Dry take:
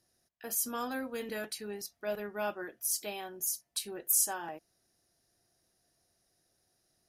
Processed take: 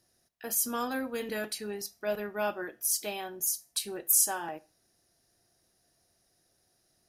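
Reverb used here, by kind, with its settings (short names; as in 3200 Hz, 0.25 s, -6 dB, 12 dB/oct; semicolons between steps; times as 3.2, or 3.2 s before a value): Schroeder reverb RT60 0.34 s, combs from 26 ms, DRR 18.5 dB; gain +3.5 dB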